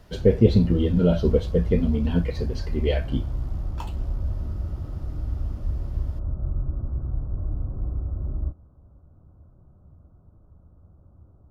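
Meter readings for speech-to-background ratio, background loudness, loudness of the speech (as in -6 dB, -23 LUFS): 8.5 dB, -31.5 LUFS, -23.0 LUFS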